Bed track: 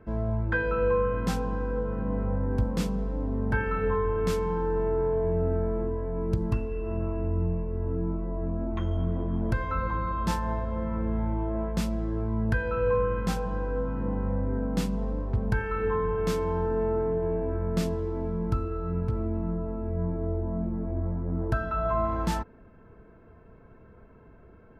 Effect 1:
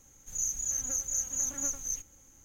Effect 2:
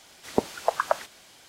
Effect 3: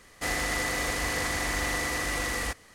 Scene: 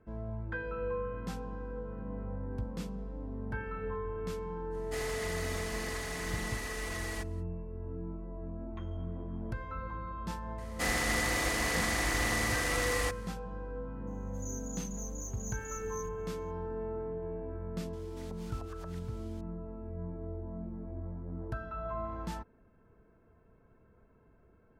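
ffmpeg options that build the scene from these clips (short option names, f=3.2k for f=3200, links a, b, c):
-filter_complex "[3:a]asplit=2[a][b];[0:a]volume=-11dB[c];[a]aecho=1:1:4.7:0.74[d];[1:a]asoftclip=type=tanh:threshold=-23dB[e];[2:a]acompressor=threshold=-40dB:ratio=3:attack=1.1:release=109:knee=1:detection=peak[f];[d]atrim=end=2.74,asetpts=PTS-STARTPTS,volume=-11.5dB,afade=t=in:d=0.05,afade=t=out:st=2.69:d=0.05,adelay=4700[g];[b]atrim=end=2.74,asetpts=PTS-STARTPTS,volume=-2dB,afade=t=in:d=0.004:c=hsin,afade=t=out:st=2.736:d=0.004:c=hsin,adelay=466578S[h];[e]atrim=end=2.44,asetpts=PTS-STARTPTS,volume=-13dB,afade=t=in:d=0.004:c=hsin,afade=t=out:st=2.436:d=0.004:c=hsin,adelay=14070[i];[f]atrim=end=1.48,asetpts=PTS-STARTPTS,volume=-11.5dB,afade=t=in:d=0.004:c=hsin,afade=t=out:st=1.476:d=0.004:c=hsin,adelay=17930[j];[c][g][h][i][j]amix=inputs=5:normalize=0"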